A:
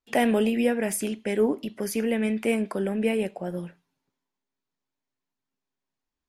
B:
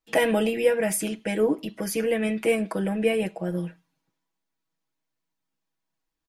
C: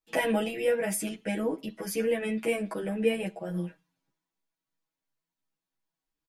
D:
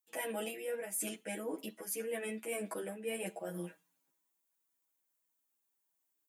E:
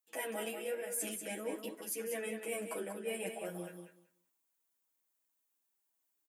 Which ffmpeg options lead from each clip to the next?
-af "aecho=1:1:6.2:0.86"
-filter_complex "[0:a]asplit=2[a][b];[b]adelay=10.6,afreqshift=2.9[c];[a][c]amix=inputs=2:normalize=1,volume=-1.5dB"
-af "highpass=280,aexciter=amount=4.2:drive=3.2:freq=6.7k,areverse,acompressor=threshold=-35dB:ratio=6,areverse,volume=-1.5dB"
-af "lowshelf=f=98:g=-9.5,flanger=delay=1.4:depth=6.4:regen=87:speed=1.1:shape=triangular,aecho=1:1:189|378|567:0.447|0.0715|0.0114,volume=4dB"

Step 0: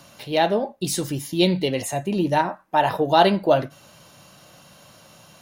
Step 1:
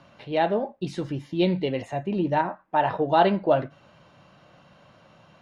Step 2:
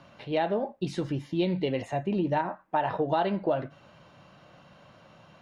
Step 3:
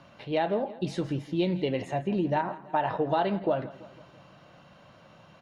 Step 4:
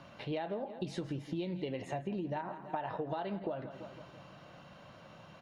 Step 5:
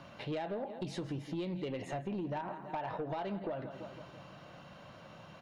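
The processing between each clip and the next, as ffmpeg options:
-af "lowpass=2.5k,volume=-3dB"
-af "acompressor=threshold=-23dB:ratio=5"
-af "aecho=1:1:166|332|498|664|830:0.126|0.068|0.0367|0.0198|0.0107"
-af "acompressor=threshold=-34dB:ratio=10"
-af "asoftclip=type=tanh:threshold=-32dB,volume=1.5dB"

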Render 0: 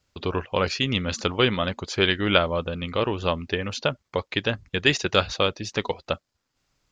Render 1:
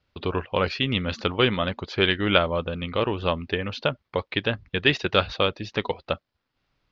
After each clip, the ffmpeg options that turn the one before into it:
-af "lowpass=f=4.2k:w=0.5412,lowpass=f=4.2k:w=1.3066"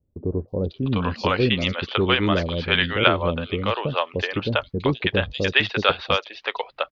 -filter_complex "[0:a]acrossover=split=500|4500[a][b][c];[c]adelay=480[d];[b]adelay=700[e];[a][e][d]amix=inputs=3:normalize=0,volume=4dB"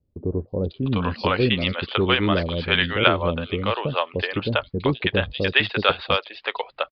-af "aresample=11025,aresample=44100"

